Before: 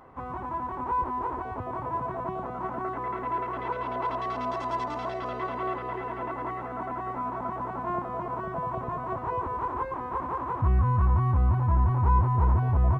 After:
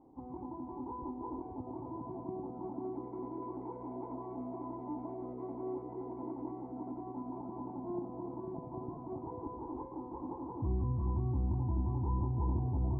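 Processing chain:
formant resonators in series u
four-comb reverb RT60 1.2 s, combs from 31 ms, DRR 7 dB
level +3 dB

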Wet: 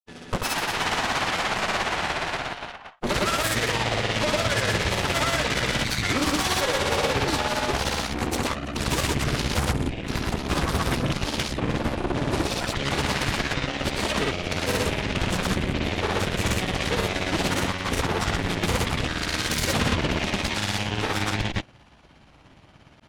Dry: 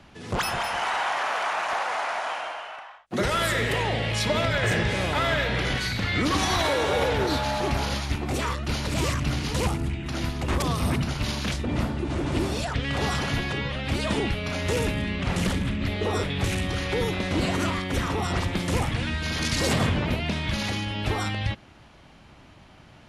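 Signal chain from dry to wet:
harmonic generator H 8 −10 dB, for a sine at −13 dBFS
granular cloud, grains 17 per second, pitch spread up and down by 0 semitones

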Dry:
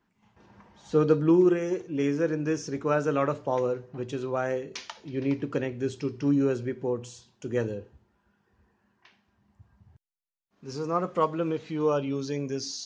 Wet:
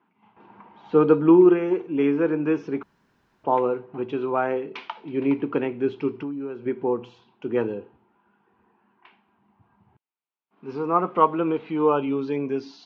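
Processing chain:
0:06.11–0:06.66: downward compressor 10 to 1, threshold −34 dBFS, peak gain reduction 14.5 dB
loudspeaker in its box 250–2,700 Hz, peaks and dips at 560 Hz −9 dB, 900 Hz +4 dB, 1,800 Hz −9 dB
0:02.83–0:03.44: fill with room tone
level +8 dB

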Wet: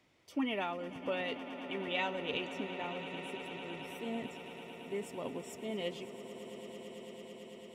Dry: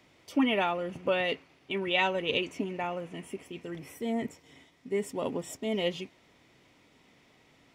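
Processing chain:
echo that builds up and dies away 111 ms, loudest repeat 8, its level −16 dB
level −8.5 dB

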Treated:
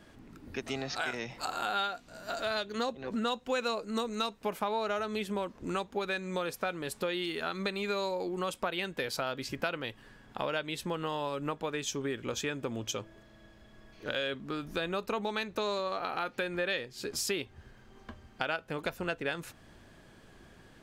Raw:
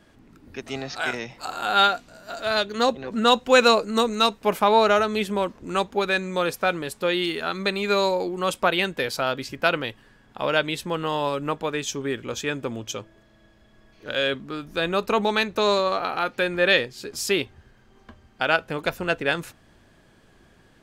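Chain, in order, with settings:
downward compressor 4 to 1, threshold −32 dBFS, peak gain reduction 17 dB

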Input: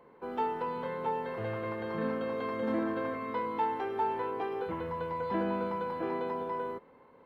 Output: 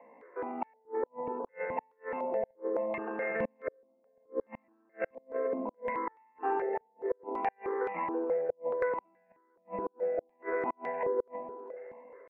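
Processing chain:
stylus tracing distortion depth 0.14 ms
Butterworth high-pass 200 Hz 48 dB per octave
tempo change 0.59×
Chebyshev low-pass with heavy ripple 2,800 Hz, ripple 6 dB
auto-filter low-pass square 0.68 Hz 540–2,000 Hz
on a send: echo with a time of its own for lows and highs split 750 Hz, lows 232 ms, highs 325 ms, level −15 dB
on the sum: gate with flip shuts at −25 dBFS, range −39 dB
step-sequenced phaser 4.7 Hz 380–1,500 Hz
level +7 dB

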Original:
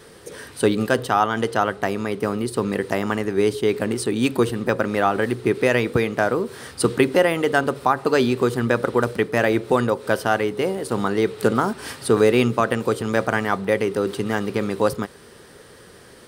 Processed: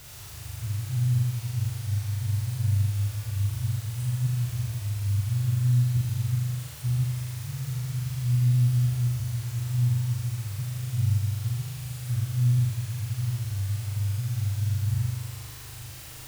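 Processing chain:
brick-wall band-stop 150–7,200 Hz
tilt shelving filter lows +8 dB, about 1,100 Hz
harmonic and percussive parts rebalanced percussive −5 dB
high-shelf EQ 3,700 Hz −7.5 dB
reversed playback
downward compressor 8 to 1, threshold −27 dBFS, peak gain reduction 13.5 dB
reversed playback
bit-depth reduction 8 bits, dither triangular
on a send: flutter between parallel walls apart 6.9 metres, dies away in 1.4 s
on the sum: highs frequency-modulated by the lows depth 0.14 ms

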